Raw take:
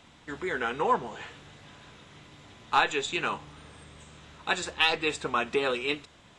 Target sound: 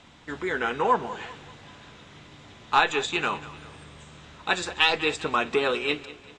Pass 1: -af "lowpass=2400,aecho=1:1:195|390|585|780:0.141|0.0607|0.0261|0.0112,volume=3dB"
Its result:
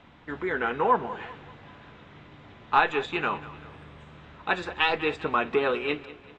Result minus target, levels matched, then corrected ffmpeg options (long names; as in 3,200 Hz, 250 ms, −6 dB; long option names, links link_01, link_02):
8,000 Hz band −16.5 dB
-af "lowpass=8000,aecho=1:1:195|390|585|780:0.141|0.0607|0.0261|0.0112,volume=3dB"